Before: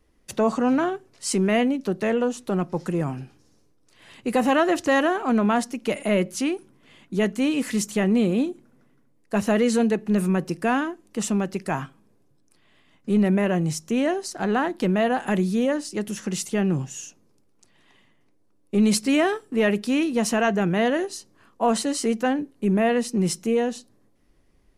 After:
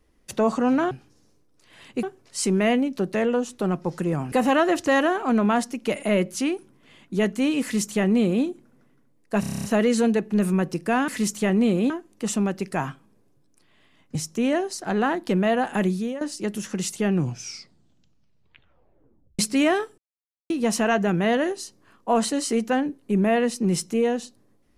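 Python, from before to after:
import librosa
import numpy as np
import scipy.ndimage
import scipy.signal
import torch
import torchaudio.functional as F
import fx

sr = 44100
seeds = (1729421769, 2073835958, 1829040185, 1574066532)

y = fx.edit(x, sr, fx.move(start_s=3.2, length_s=1.12, to_s=0.91),
    fx.duplicate(start_s=7.62, length_s=0.82, to_s=10.84),
    fx.stutter(start_s=9.4, slice_s=0.03, count=9),
    fx.cut(start_s=13.09, length_s=0.59),
    fx.fade_out_to(start_s=15.39, length_s=0.35, floor_db=-14.5),
    fx.tape_stop(start_s=16.65, length_s=2.27),
    fx.silence(start_s=19.51, length_s=0.52), tone=tone)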